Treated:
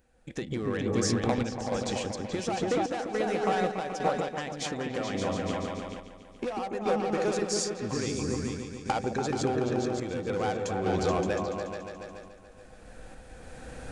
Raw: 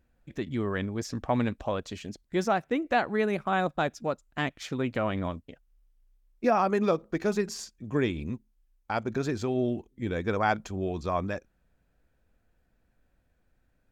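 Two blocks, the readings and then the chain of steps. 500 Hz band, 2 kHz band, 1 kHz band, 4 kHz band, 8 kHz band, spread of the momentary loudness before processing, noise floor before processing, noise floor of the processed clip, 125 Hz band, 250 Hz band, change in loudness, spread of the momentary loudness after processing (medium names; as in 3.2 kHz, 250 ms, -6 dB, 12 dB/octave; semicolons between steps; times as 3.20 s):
+0.5 dB, -3.0 dB, -1.0 dB, +4.0 dB, +9.0 dB, 9 LU, -71 dBFS, -51 dBFS, 0.0 dB, -0.5 dB, -0.5 dB, 16 LU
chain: recorder AGC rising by 11 dB/s; small resonant body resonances 500/780 Hz, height 11 dB, ringing for 90 ms; in parallel at -3.5 dB: wavefolder -21.5 dBFS; on the sum: bass shelf 230 Hz -6 dB; resampled via 22.05 kHz; compression, threshold -28 dBFS, peak gain reduction 14 dB; treble shelf 6.9 kHz +11 dB; on a send: delay with an opening low-pass 143 ms, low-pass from 400 Hz, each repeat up 2 oct, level 0 dB; on the sum: random-step tremolo; trim +1.5 dB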